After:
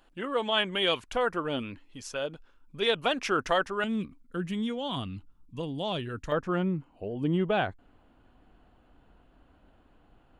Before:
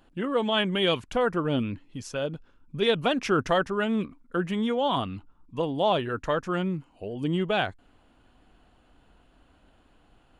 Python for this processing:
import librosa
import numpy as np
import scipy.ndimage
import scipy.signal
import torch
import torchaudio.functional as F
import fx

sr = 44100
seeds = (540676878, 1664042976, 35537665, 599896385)

y = fx.peak_eq(x, sr, hz=fx.steps((0.0, 130.0), (3.84, 810.0), (6.32, 9200.0)), db=-11.0, octaves=2.8)